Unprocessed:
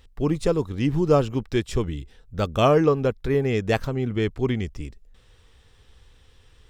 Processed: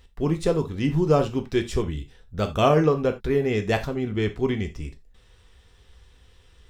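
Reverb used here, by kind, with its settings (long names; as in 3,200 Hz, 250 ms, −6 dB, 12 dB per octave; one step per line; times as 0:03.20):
reverb whose tail is shaped and stops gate 110 ms falling, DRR 5.5 dB
level −1 dB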